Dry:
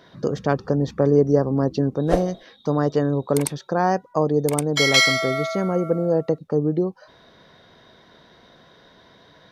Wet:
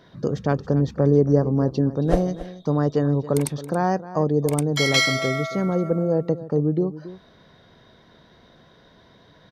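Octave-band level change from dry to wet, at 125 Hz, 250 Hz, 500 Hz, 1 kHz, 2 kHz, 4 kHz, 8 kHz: +2.5, +0.5, −2.0, −3.0, −3.0, −3.5, −3.5 decibels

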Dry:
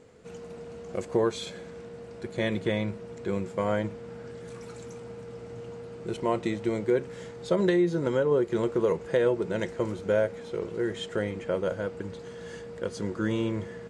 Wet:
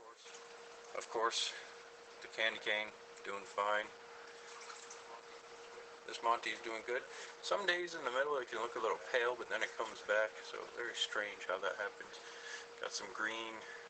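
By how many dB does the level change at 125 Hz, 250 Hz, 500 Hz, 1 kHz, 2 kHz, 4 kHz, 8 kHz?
below −30 dB, −22.5 dB, −14.0 dB, −2.0 dB, −0.5 dB, +0.5 dB, can't be measured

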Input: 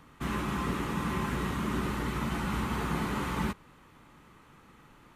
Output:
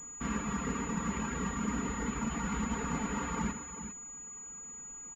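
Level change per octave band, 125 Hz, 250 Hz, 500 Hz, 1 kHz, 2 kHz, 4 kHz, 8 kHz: −5.0, −1.5, −4.0, −3.5, −3.5, −7.5, +10.0 decibels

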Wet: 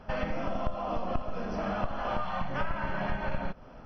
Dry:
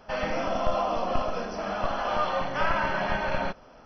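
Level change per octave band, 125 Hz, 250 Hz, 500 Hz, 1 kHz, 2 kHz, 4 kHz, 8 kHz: +1.0 dB, −1.0 dB, −6.5 dB, −6.5 dB, −7.0 dB, −9.0 dB, can't be measured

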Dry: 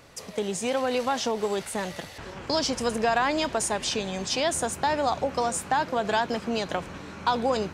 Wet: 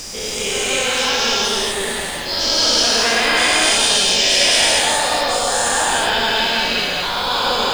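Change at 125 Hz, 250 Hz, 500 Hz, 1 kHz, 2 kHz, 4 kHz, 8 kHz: +3.0, +2.0, +5.0, +6.5, +14.5, +19.0, +15.0 decibels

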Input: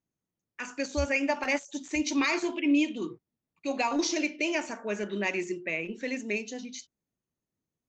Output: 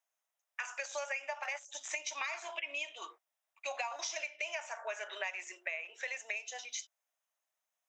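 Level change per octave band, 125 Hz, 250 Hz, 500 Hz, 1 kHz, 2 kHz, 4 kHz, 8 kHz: below −40 dB, −40.0 dB, −12.0 dB, −7.5 dB, −6.5 dB, −6.5 dB, can't be measured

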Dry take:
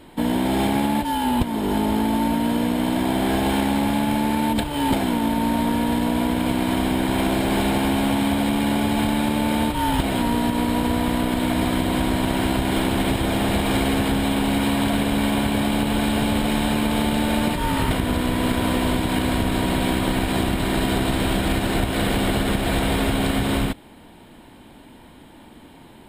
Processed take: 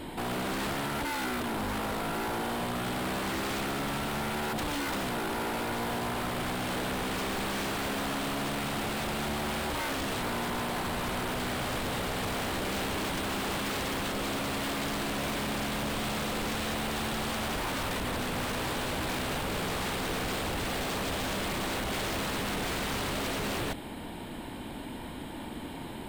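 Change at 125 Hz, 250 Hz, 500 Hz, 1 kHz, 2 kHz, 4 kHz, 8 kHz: −12.0, −15.0, −9.0, −8.5, −5.5, −6.5, −5.0 decibels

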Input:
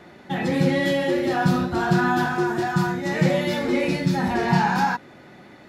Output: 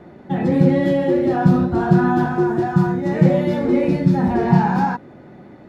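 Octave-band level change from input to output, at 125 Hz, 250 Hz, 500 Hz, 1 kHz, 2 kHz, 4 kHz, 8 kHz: +6.5 dB, +6.0 dB, +4.5 dB, +1.5 dB, −4.0 dB, can't be measured, below −10 dB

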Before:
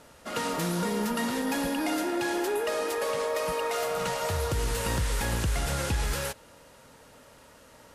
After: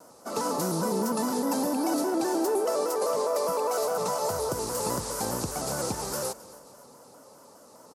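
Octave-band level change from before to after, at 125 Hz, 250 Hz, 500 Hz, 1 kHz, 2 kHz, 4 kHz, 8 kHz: −6.5, +1.5, +3.0, +2.0, −8.0, −2.5, +3.0 decibels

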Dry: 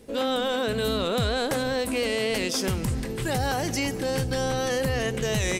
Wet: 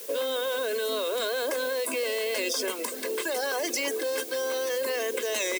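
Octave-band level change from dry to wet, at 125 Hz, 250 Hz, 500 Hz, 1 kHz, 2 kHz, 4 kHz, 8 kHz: below −35 dB, −11.0 dB, −1.0 dB, −5.5 dB, −1.0 dB, −2.0 dB, +1.0 dB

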